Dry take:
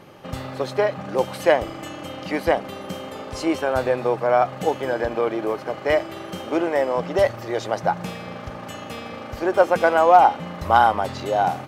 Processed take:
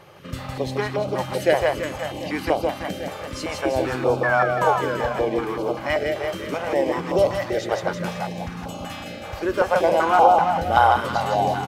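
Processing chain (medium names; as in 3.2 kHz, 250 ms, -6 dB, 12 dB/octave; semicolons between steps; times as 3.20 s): painted sound fall, 4.23–4.75 s, 810–1800 Hz -23 dBFS; on a send: reverse bouncing-ball echo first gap 160 ms, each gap 1.1×, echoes 5; on the sum: step-sequenced notch 5.2 Hz 250–1800 Hz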